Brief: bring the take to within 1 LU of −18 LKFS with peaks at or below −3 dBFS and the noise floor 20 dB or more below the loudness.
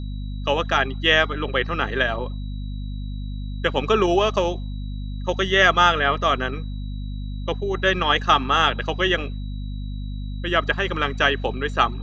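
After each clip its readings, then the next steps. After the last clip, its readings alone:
mains hum 50 Hz; hum harmonics up to 250 Hz; level of the hum −27 dBFS; interfering tone 3,900 Hz; level of the tone −49 dBFS; integrated loudness −21.0 LKFS; sample peak −2.5 dBFS; target loudness −18.0 LKFS
→ hum removal 50 Hz, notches 5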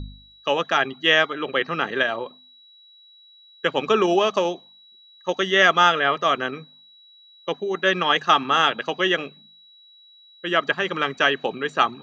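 mains hum none found; interfering tone 3,900 Hz; level of the tone −49 dBFS
→ notch filter 3,900 Hz, Q 30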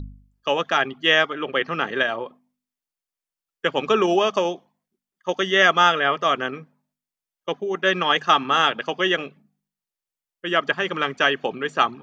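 interfering tone none found; integrated loudness −21.0 LKFS; sample peak −2.5 dBFS; target loudness −18.0 LKFS
→ level +3 dB
brickwall limiter −3 dBFS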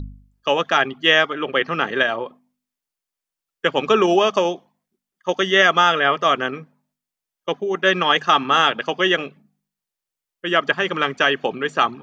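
integrated loudness −18.5 LKFS; sample peak −3.0 dBFS; background noise floor −86 dBFS

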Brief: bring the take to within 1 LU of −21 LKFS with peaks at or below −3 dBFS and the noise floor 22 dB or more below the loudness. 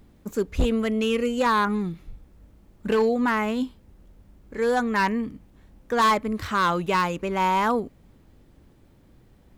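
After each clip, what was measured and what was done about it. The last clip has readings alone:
share of clipped samples 1.4%; peaks flattened at −15.5 dBFS; integrated loudness −24.0 LKFS; sample peak −15.5 dBFS; target loudness −21.0 LKFS
→ clipped peaks rebuilt −15.5 dBFS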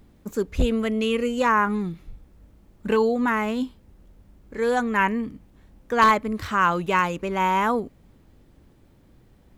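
share of clipped samples 0.0%; integrated loudness −23.0 LKFS; sample peak −6.5 dBFS; target loudness −21.0 LKFS
→ level +2 dB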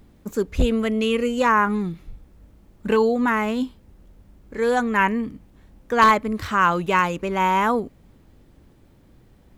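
integrated loudness −21.0 LKFS; sample peak −4.5 dBFS; background noise floor −54 dBFS

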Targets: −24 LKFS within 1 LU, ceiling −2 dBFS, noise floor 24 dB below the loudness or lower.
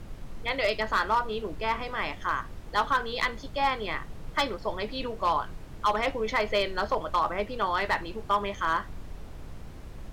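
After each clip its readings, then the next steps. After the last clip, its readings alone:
share of clipped samples 0.5%; peaks flattened at −17.5 dBFS; background noise floor −43 dBFS; target noise floor −53 dBFS; integrated loudness −29.0 LKFS; sample peak −17.5 dBFS; target loudness −24.0 LKFS
→ clipped peaks rebuilt −17.5 dBFS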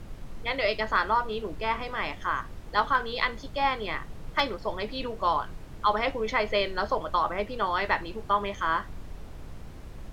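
share of clipped samples 0.0%; background noise floor −43 dBFS; target noise floor −53 dBFS
→ noise reduction from a noise print 10 dB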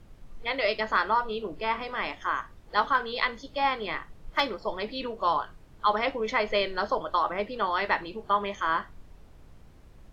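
background noise floor −52 dBFS; target noise floor −53 dBFS
→ noise reduction from a noise print 6 dB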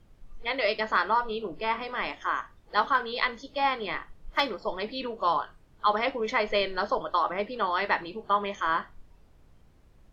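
background noise floor −58 dBFS; integrated loudness −28.5 LKFS; sample peak −9.0 dBFS; target loudness −24.0 LKFS
→ level +4.5 dB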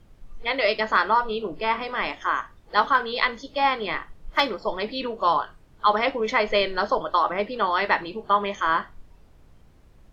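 integrated loudness −24.0 LKFS; sample peak −4.5 dBFS; background noise floor −53 dBFS

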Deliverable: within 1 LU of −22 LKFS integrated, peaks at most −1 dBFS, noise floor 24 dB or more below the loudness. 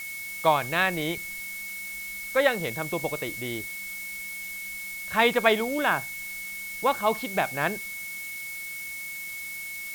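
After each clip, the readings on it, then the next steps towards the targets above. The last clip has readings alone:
interfering tone 2,200 Hz; level of the tone −35 dBFS; background noise floor −37 dBFS; target noise floor −52 dBFS; integrated loudness −28.0 LKFS; sample peak −5.5 dBFS; target loudness −22.0 LKFS
→ notch filter 2,200 Hz, Q 30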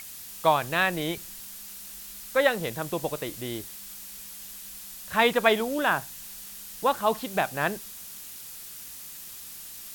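interfering tone none found; background noise floor −42 dBFS; target noise floor −52 dBFS
→ broadband denoise 10 dB, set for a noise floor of −42 dBFS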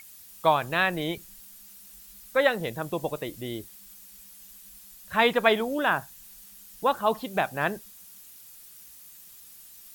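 background noise floor −50 dBFS; target noise floor −51 dBFS
→ broadband denoise 6 dB, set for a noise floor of −50 dBFS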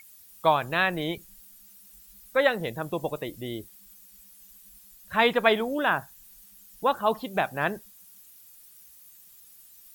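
background noise floor −53 dBFS; integrated loudness −26.5 LKFS; sample peak −6.0 dBFS; target loudness −22.0 LKFS
→ level +4.5 dB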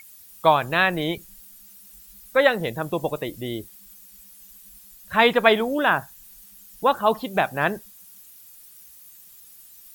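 integrated loudness −22.0 LKFS; sample peak −1.5 dBFS; background noise floor −49 dBFS

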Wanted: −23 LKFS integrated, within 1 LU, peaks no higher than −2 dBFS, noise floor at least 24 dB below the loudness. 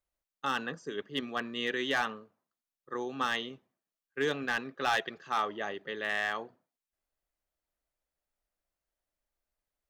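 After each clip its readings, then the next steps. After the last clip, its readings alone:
share of clipped samples 0.3%; peaks flattened at −21.5 dBFS; integrated loudness −33.5 LKFS; sample peak −21.5 dBFS; target loudness −23.0 LKFS
→ clipped peaks rebuilt −21.5 dBFS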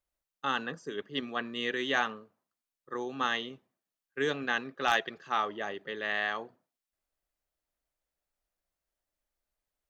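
share of clipped samples 0.0%; integrated loudness −32.5 LKFS; sample peak −12.5 dBFS; target loudness −23.0 LKFS
→ level +9.5 dB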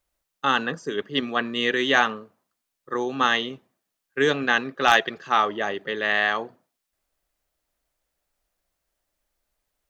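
integrated loudness −23.0 LKFS; sample peak −3.0 dBFS; background noise floor −82 dBFS

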